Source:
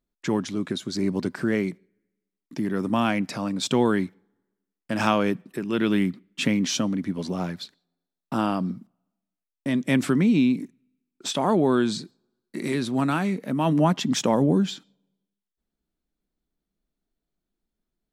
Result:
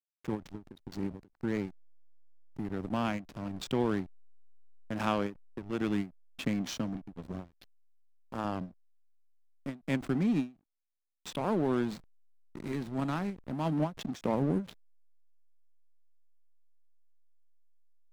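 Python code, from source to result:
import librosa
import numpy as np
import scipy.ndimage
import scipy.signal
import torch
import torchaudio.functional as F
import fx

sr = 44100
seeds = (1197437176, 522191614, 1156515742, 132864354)

y = fx.peak_eq(x, sr, hz=99.0, db=-9.5, octaves=2.3, at=(7.44, 8.45))
y = fx.backlash(y, sr, play_db=-23.0)
y = fx.end_taper(y, sr, db_per_s=230.0)
y = F.gain(torch.from_numpy(y), -8.0).numpy()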